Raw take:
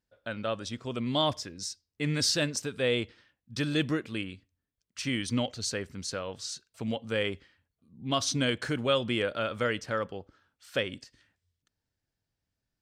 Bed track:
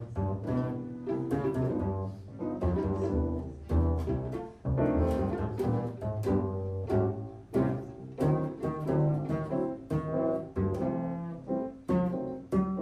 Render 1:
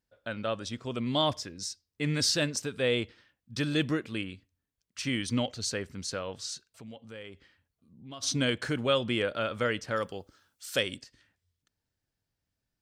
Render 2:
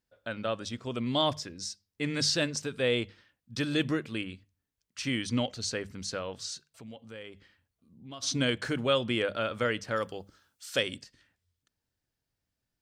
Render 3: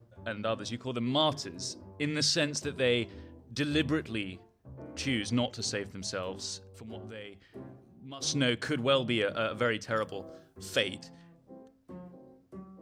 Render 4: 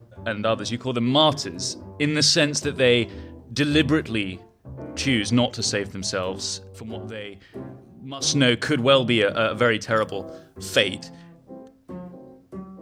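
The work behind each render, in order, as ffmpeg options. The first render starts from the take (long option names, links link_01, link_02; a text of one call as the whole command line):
ffmpeg -i in.wav -filter_complex "[0:a]asplit=3[link_01][link_02][link_03];[link_01]afade=type=out:start_time=6.68:duration=0.02[link_04];[link_02]acompressor=threshold=-53dB:ratio=2:attack=3.2:release=140:knee=1:detection=peak,afade=type=in:start_time=6.68:duration=0.02,afade=type=out:start_time=8.22:duration=0.02[link_05];[link_03]afade=type=in:start_time=8.22:duration=0.02[link_06];[link_04][link_05][link_06]amix=inputs=3:normalize=0,asettb=1/sr,asplit=3[link_07][link_08][link_09];[link_07]atrim=end=9.964[link_10];[link_08]atrim=start=9.96:end=10.97,asetpts=PTS-STARTPTS,afade=type=in:duration=0.004:curve=qsin,afade=type=out:start_time=1.006:duration=0.004:curve=qsin,bass=frequency=250:gain=-1,treble=frequency=4000:gain=14[link_11];[link_09]atrim=start=10.966[link_12];[link_10][link_11]acrossfade=duration=0.004:curve1=hsin:curve2=qsin[link_13];[link_13][link_12]acrossfade=duration=0.004:curve1=qsin:curve2=hsin" out.wav
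ffmpeg -i in.wav -filter_complex "[0:a]bandreject=frequency=50:width_type=h:width=6,bandreject=frequency=100:width_type=h:width=6,bandreject=frequency=150:width_type=h:width=6,bandreject=frequency=200:width_type=h:width=6,acrossover=split=8300[link_01][link_02];[link_02]acompressor=threshold=-51dB:ratio=4:attack=1:release=60[link_03];[link_01][link_03]amix=inputs=2:normalize=0" out.wav
ffmpeg -i in.wav -i bed.wav -filter_complex "[1:a]volume=-18.5dB[link_01];[0:a][link_01]amix=inputs=2:normalize=0" out.wav
ffmpeg -i in.wav -af "volume=9.5dB" out.wav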